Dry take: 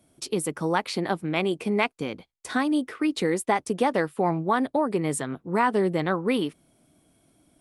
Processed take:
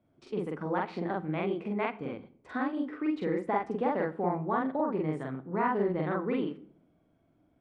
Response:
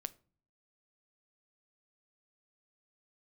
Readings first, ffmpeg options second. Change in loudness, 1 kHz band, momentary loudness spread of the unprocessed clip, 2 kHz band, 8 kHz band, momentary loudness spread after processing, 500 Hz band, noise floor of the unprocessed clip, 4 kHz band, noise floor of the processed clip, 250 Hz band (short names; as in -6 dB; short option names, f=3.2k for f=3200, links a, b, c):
-6.0 dB, -5.5 dB, 6 LU, -8.5 dB, under -30 dB, 8 LU, -5.5 dB, -69 dBFS, -17.0 dB, -69 dBFS, -5.5 dB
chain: -filter_complex "[0:a]lowpass=1.8k,asplit=2[a][b];[1:a]atrim=start_sample=2205,asetrate=25137,aresample=44100,adelay=45[c];[b][c]afir=irnorm=-1:irlink=0,volume=0dB[d];[a][d]amix=inputs=2:normalize=0,volume=-8.5dB"